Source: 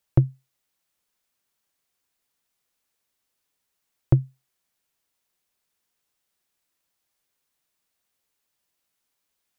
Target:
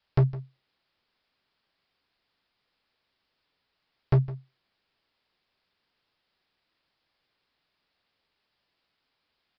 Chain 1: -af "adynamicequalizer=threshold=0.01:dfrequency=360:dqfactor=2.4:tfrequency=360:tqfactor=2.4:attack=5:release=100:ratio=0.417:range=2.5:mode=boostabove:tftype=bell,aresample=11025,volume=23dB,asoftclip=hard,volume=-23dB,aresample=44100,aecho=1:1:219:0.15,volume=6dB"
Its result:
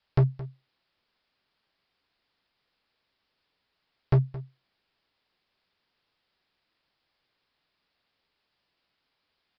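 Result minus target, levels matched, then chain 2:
echo 60 ms late
-af "adynamicequalizer=threshold=0.01:dfrequency=360:dqfactor=2.4:tfrequency=360:tqfactor=2.4:attack=5:release=100:ratio=0.417:range=2.5:mode=boostabove:tftype=bell,aresample=11025,volume=23dB,asoftclip=hard,volume=-23dB,aresample=44100,aecho=1:1:159:0.15,volume=6dB"

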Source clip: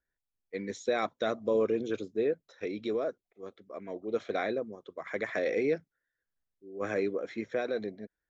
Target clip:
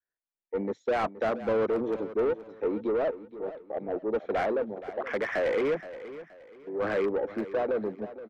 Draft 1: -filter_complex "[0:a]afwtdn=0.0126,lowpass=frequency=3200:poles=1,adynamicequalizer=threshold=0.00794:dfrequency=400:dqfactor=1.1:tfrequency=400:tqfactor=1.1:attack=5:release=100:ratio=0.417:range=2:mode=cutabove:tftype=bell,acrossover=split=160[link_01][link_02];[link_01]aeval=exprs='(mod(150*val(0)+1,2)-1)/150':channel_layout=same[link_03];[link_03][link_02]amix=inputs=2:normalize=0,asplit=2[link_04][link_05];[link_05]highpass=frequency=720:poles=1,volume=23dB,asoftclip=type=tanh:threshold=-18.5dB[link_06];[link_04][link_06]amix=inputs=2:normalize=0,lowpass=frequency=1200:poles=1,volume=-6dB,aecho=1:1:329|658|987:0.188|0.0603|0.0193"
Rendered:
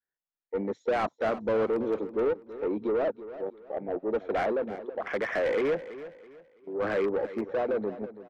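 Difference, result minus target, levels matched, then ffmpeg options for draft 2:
echo 144 ms early
-filter_complex "[0:a]afwtdn=0.0126,lowpass=frequency=3200:poles=1,adynamicequalizer=threshold=0.00794:dfrequency=400:dqfactor=1.1:tfrequency=400:tqfactor=1.1:attack=5:release=100:ratio=0.417:range=2:mode=cutabove:tftype=bell,acrossover=split=160[link_01][link_02];[link_01]aeval=exprs='(mod(150*val(0)+1,2)-1)/150':channel_layout=same[link_03];[link_03][link_02]amix=inputs=2:normalize=0,asplit=2[link_04][link_05];[link_05]highpass=frequency=720:poles=1,volume=23dB,asoftclip=type=tanh:threshold=-18.5dB[link_06];[link_04][link_06]amix=inputs=2:normalize=0,lowpass=frequency=1200:poles=1,volume=-6dB,aecho=1:1:473|946|1419:0.188|0.0603|0.0193"

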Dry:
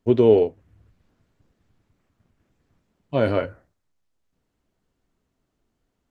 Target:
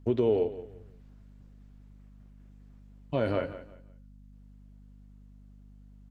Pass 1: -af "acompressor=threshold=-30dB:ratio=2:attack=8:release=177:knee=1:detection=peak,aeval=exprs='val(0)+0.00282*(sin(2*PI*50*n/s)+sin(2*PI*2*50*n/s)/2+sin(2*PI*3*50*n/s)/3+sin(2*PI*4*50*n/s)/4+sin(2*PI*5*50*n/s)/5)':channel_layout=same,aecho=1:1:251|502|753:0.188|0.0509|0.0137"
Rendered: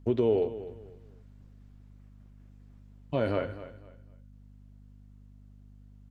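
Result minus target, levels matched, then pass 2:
echo 76 ms late
-af "acompressor=threshold=-30dB:ratio=2:attack=8:release=177:knee=1:detection=peak,aeval=exprs='val(0)+0.00282*(sin(2*PI*50*n/s)+sin(2*PI*2*50*n/s)/2+sin(2*PI*3*50*n/s)/3+sin(2*PI*4*50*n/s)/4+sin(2*PI*5*50*n/s)/5)':channel_layout=same,aecho=1:1:175|350|525:0.188|0.0509|0.0137"

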